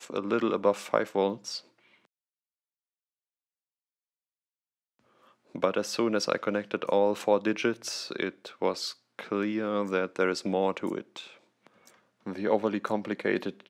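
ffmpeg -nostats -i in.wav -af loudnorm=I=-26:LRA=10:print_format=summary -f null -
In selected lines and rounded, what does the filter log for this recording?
Input Integrated:    -29.6 LUFS
Input True Peak:      -8.7 dBTP
Input LRA:             8.2 LU
Input Threshold:     -40.8 LUFS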